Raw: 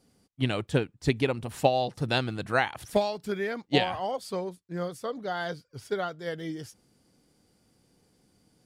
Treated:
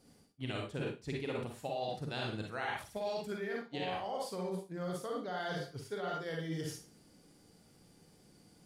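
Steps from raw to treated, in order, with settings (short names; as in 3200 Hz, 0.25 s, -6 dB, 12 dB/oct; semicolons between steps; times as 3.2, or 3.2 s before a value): Schroeder reverb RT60 0.37 s, DRR -0.5 dB; reverse; compressor 12:1, threshold -35 dBFS, peak gain reduction 20 dB; reverse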